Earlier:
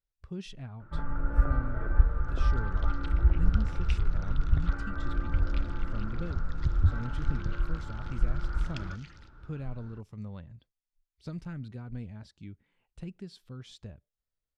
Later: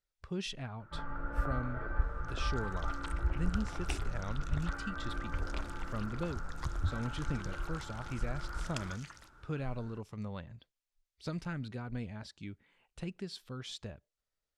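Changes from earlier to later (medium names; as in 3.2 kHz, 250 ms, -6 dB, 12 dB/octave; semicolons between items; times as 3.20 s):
speech +7.5 dB; second sound: remove Butterworth band-pass 3 kHz, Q 1; master: add bass shelf 300 Hz -10.5 dB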